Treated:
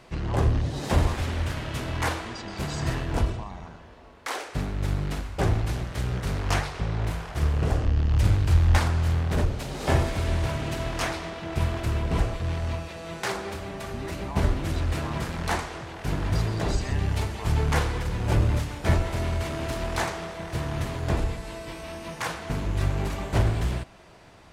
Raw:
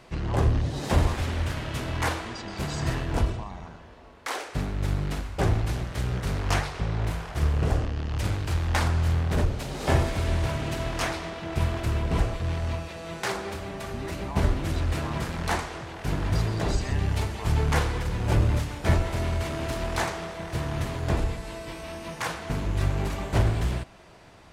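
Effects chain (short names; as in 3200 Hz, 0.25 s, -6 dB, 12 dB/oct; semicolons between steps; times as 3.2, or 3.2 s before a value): 7.85–8.78 low shelf 150 Hz +10 dB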